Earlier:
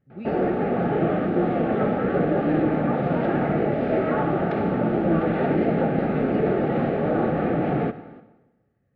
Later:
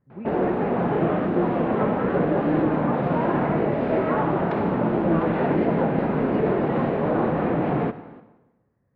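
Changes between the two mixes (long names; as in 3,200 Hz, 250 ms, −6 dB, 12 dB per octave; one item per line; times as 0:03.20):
speech: add low-pass filter 2,100 Hz 24 dB per octave
master: remove Butterworth band-reject 1,000 Hz, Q 4.4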